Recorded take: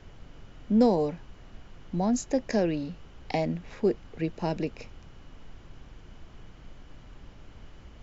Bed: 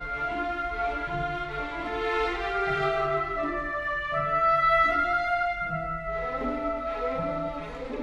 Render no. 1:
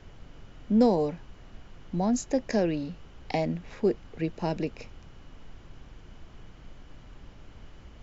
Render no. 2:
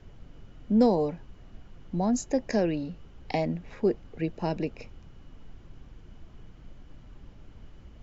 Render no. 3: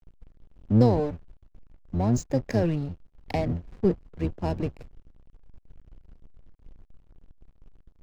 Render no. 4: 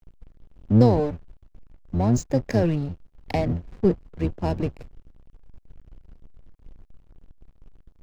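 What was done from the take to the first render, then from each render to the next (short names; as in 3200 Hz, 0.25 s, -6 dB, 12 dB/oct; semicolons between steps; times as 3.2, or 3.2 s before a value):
nothing audible
denoiser 6 dB, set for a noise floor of -51 dBFS
octaver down 1 oct, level +1 dB; backlash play -35 dBFS
gain +3 dB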